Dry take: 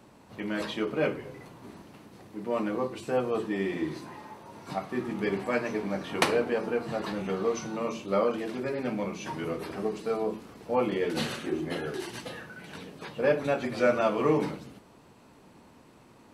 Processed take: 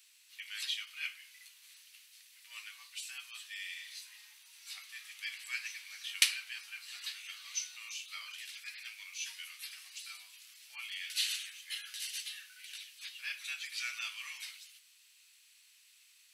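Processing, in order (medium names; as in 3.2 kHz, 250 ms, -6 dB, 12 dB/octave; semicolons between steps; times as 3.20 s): inverse Chebyshev high-pass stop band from 420 Hz, stop band 80 dB; treble shelf 8.7 kHz +6 dB; trim +3.5 dB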